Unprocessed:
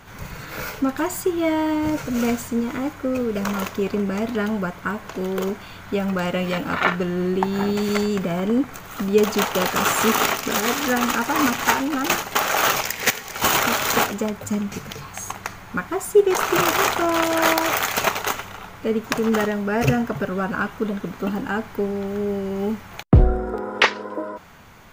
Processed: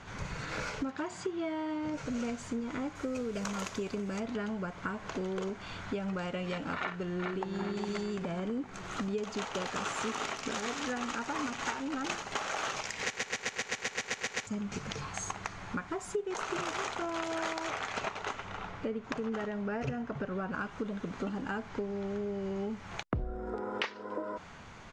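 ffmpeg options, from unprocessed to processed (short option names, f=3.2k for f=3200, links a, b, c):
-filter_complex "[0:a]asettb=1/sr,asplit=3[a][b][c];[a]atrim=end=0.914[d];[b]atrim=start=0.91:end=1.94,asetpts=PTS-STARTPTS,afade=t=in:d=0.004:c=qsin,afade=t=out:st=1.026:d=0.004:c=qsin,highpass=110,lowpass=6.1k[e];[c]atrim=start=1.936[f];[d][e]acrossfade=d=0.004:c1=hsin:c2=qsin[g];[g][f]acrossfade=d=0.004:c1=qsin:c2=hsin,asettb=1/sr,asplit=3[h][i][j];[h]atrim=end=2.954[k];[i]atrim=start=2.95:end=4.2,asetpts=PTS-STARTPTS,afade=t=in:d=0.004:c=qsin,afade=t=out:st=1.246:d=0.004:c=qsin,aemphasis=mode=production:type=50fm[l];[j]atrim=start=4.196[m];[k][l]acrossfade=d=0.004:c1=hsin:c2=qsin[n];[n][m]acrossfade=d=0.004:c1=qsin:c2=hsin,asplit=2[o][p];[p]afade=t=in:st=6.78:d=0.01,afade=t=out:st=7.58:d=0.01,aecho=0:1:410|820|1230|1640|2050:0.530884|0.212354|0.0849415|0.0339766|0.0135906[q];[o][q]amix=inputs=2:normalize=0,asettb=1/sr,asplit=3[r][s][t];[r]atrim=end=17.704[u];[s]atrim=start=17.7:end=20.54,asetpts=PTS-STARTPTS,afade=t=in:d=0.004:c=qsin,afade=t=out:st=2.836:d=0.004:c=qsin,aemphasis=mode=reproduction:type=50kf[v];[t]atrim=start=20.536[w];[u][v]acrossfade=d=0.004:c1=hsin:c2=qsin[x];[x][w]acrossfade=d=0.004:c1=qsin:c2=hsin,asettb=1/sr,asplit=3[y][z][aa];[y]atrim=end=21.694[ab];[z]atrim=start=21.69:end=22.71,asetpts=PTS-STARTPTS,afade=t=in:d=0.004:c=qsin,afade=t=out:st=1.016:d=0.004:c=qsin,lowpass=f=8.1k:w=0.5412,lowpass=f=8.1k:w=1.3066[ac];[aa]atrim=start=22.706[ad];[ab][ac]acrossfade=d=0.004:c1=hsin:c2=qsin[ae];[ae][ad]acrossfade=d=0.004:c1=qsin:c2=hsin,asplit=12[af][ag][ah][ai][aj][ak][al][am][an][ao][ap][aq];[af]atrim=end=13.172[ar];[ag]atrim=start=13.038:end=13.172[as];[ah]atrim=start=13.038:end=13.172[at];[ai]atrim=start=13.038:end=13.172[au];[aj]atrim=start=13.038:end=13.172[av];[ak]atrim=start=13.038:end=13.172[aw];[al]atrim=start=13.038:end=13.172[ax];[am]atrim=start=13.038:end=13.172[ay];[an]atrim=start=13.038:end=13.172[az];[ao]atrim=start=13.038:end=13.172[ba];[ap]atrim=start=13.038:end=13.172[bb];[aq]atrim=start=14.468[bc];[ar][as]acrossfade=d=0.004:c1=hsin:c2=hsin[bd];[bd][at]acrossfade=d=0.004:c1=hsin:c2=hsin[be];[be][au]acrossfade=d=0.004:c1=hsin:c2=hsin[bf];[bf][av]acrossfade=d=0.004:c1=hsin:c2=hsin[bg];[bg][aw]acrossfade=d=0.004:c1=hsin:c2=hsin[bh];[bh][ax]acrossfade=d=0.004:c1=hsin:c2=hsin[bi];[bi][ay]acrossfade=d=0.004:c1=hsin:c2=hsin[bj];[bj][az]acrossfade=d=0.004:c1=hsin:c2=hsin[bk];[bk][ba]acrossfade=d=0.004:c1=hsin:c2=hsin[bl];[bl][bb]acrossfade=d=0.004:c1=hsin:c2=hsin[bm];[bm][bc]acrossfade=d=0.004:c1=hsin:c2=hsin,lowpass=f=7.5k:w=0.5412,lowpass=f=7.5k:w=1.3066,acompressor=threshold=-30dB:ratio=6,volume=-3dB"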